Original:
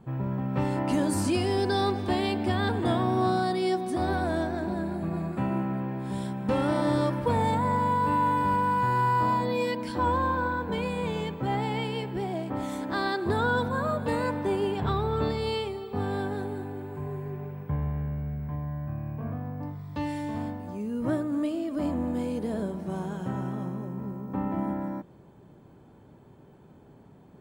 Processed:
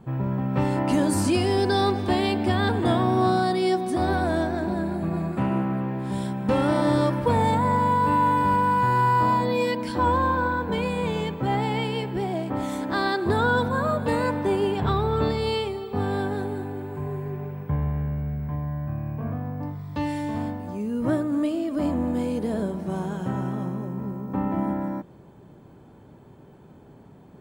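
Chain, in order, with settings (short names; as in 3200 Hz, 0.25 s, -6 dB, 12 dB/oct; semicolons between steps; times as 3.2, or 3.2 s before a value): 5.39–6.12 Doppler distortion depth 0.13 ms; gain +4 dB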